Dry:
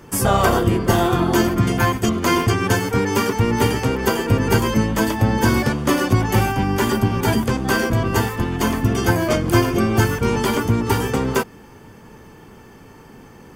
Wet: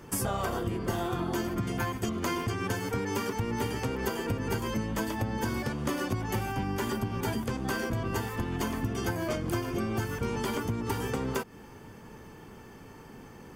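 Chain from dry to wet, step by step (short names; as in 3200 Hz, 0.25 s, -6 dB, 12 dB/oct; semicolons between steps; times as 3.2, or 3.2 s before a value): compressor, threshold -23 dBFS, peak gain reduction 12.5 dB; gain -5 dB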